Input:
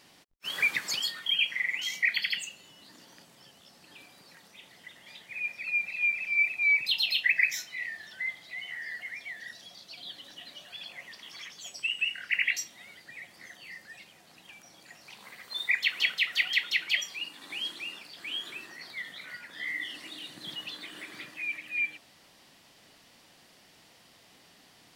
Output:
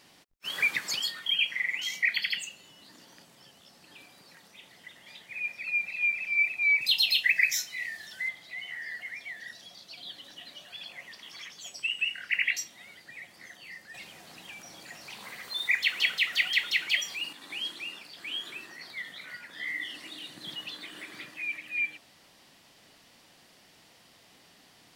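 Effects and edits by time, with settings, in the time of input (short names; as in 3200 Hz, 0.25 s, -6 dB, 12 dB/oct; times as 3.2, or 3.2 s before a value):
6.81–8.29 tone controls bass +1 dB, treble +8 dB
13.94–17.33 G.711 law mismatch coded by mu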